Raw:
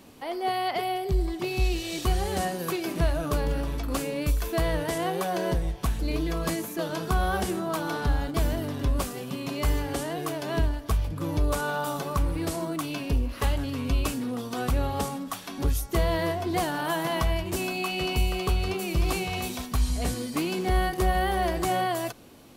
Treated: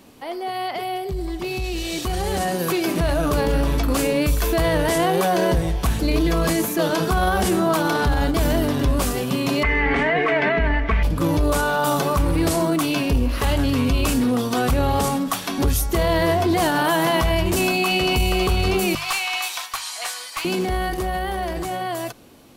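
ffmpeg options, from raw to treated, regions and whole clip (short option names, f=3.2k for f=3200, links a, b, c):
-filter_complex "[0:a]asettb=1/sr,asplit=3[a][b][c];[a]atrim=end=9.634[d];[b]atrim=start=9.63:end=11.03,asetpts=PTS-STARTPTS,afade=t=in:d=0.004:c=qsin,afade=t=out:st=1.396:d=0.004:c=qsin,lowpass=f=2.1k:t=q:w=6.6,aecho=1:1:4.5:0.64,atrim=end_sample=61740[e];[c]atrim=start=11.026[f];[d][e]acrossfade=d=0.004:c1=hsin:c2=qsin[g];[g][f]acrossfade=d=0.004:c1=qsin:c2=hsin,asettb=1/sr,asplit=3[h][i][j];[h]atrim=end=18.954[k];[i]atrim=start=18.95:end=20.45,asetpts=PTS-STARTPTS,afade=t=in:d=0.004:c=qsin,afade=t=out:st=1.496:d=0.004:c=qsin,highpass=f=880:w=0.5412,highpass=f=880:w=1.3066,highshelf=f=10k:g=-7.5,aeval=exprs='clip(val(0),-1,0.0282)':c=same[l];[j]atrim=start=20.446[m];[k][l]acrossfade=d=0.004:c1=hsin:c2=qsin[n];[n][m]acrossfade=d=0.004:c1=qsin:c2=hsin,bandreject=f=50:t=h:w=6,bandreject=f=100:t=h:w=6,bandreject=f=150:t=h:w=6,alimiter=limit=-23dB:level=0:latency=1:release=12,dynaudnorm=f=230:g=21:m=9dB,volume=2.5dB"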